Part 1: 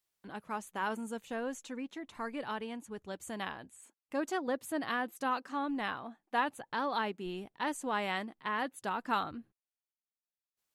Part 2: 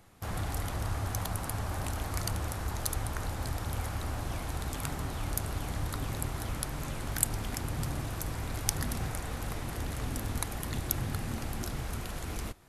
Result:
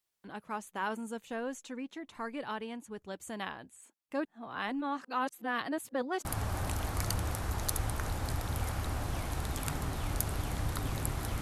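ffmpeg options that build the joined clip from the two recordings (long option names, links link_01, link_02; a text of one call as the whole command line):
ffmpeg -i cue0.wav -i cue1.wav -filter_complex "[0:a]apad=whole_dur=11.41,atrim=end=11.41,asplit=2[link_01][link_02];[link_01]atrim=end=4.252[link_03];[link_02]atrim=start=4.248:end=6.252,asetpts=PTS-STARTPTS,areverse[link_04];[1:a]atrim=start=1.418:end=6.58[link_05];[link_03][link_04]acrossfade=duration=0.004:curve1=hsin:curve2=hsin[link_06];[link_06][link_05]acrossfade=duration=0.004:curve1=hsin:curve2=hsin" out.wav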